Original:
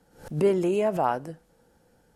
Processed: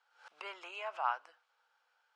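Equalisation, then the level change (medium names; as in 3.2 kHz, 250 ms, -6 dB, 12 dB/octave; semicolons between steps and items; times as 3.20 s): high-pass 1.3 kHz 24 dB/octave; tape spacing loss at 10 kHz 37 dB; peaking EQ 1.8 kHz -11 dB 0.46 oct; +9.0 dB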